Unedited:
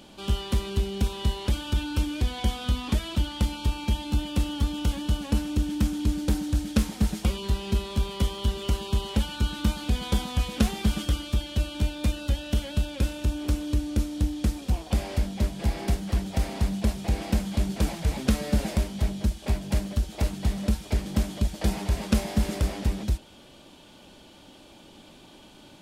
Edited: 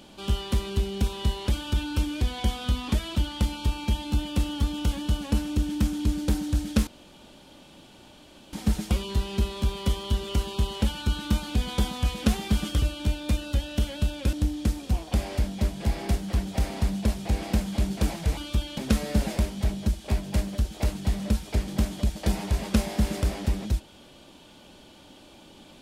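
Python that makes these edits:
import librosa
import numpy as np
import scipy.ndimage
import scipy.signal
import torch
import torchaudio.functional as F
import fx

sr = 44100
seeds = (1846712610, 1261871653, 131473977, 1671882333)

y = fx.edit(x, sr, fx.insert_room_tone(at_s=6.87, length_s=1.66),
    fx.move(start_s=11.16, length_s=0.41, to_s=18.16),
    fx.cut(start_s=13.08, length_s=1.04), tone=tone)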